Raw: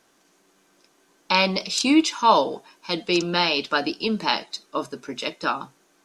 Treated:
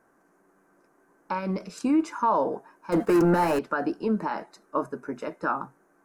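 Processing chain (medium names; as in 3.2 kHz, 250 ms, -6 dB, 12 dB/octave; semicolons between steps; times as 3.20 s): peak limiter -14 dBFS, peak gain reduction 10 dB; 1.38–1.97 s: peaking EQ 800 Hz -12 dB -> -3 dB 1 oct; 2.92–3.59 s: waveshaping leveller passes 3; FFT filter 1.6 kHz 0 dB, 3.4 kHz -27 dB, 10 kHz -9 dB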